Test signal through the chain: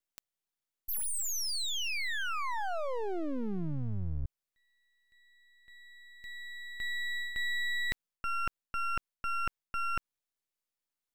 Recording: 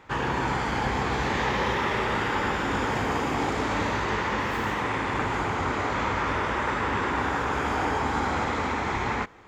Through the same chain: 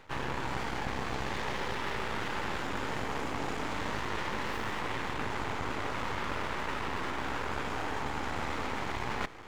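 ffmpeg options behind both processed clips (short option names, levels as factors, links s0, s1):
-af "areverse,acompressor=threshold=0.0178:ratio=6,areverse,aeval=exprs='max(val(0),0)':c=same,volume=2.11"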